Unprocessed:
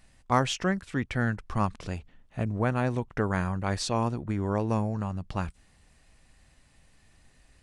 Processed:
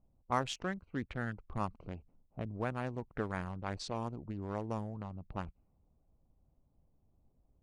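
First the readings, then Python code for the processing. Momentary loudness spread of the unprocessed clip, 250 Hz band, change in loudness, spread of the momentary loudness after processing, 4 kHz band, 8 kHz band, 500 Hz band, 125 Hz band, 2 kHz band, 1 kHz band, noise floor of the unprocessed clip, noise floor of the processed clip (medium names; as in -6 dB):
8 LU, -11.0 dB, -10.0 dB, 9 LU, -10.0 dB, -12.0 dB, -9.5 dB, -11.5 dB, -9.5 dB, -8.5 dB, -62 dBFS, -74 dBFS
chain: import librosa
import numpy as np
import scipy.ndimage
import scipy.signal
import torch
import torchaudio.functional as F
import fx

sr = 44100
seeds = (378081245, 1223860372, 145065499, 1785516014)

y = fx.wiener(x, sr, points=25)
y = fx.hpss(y, sr, part='harmonic', gain_db=-5)
y = fx.env_lowpass(y, sr, base_hz=870.0, full_db=-26.0)
y = F.gain(torch.from_numpy(y), -7.0).numpy()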